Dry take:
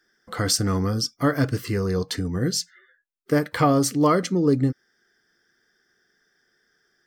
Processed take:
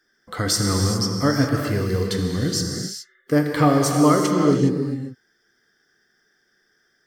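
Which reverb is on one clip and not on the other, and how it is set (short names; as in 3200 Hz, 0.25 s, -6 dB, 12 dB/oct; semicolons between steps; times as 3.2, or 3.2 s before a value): non-linear reverb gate 0.44 s flat, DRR 1.5 dB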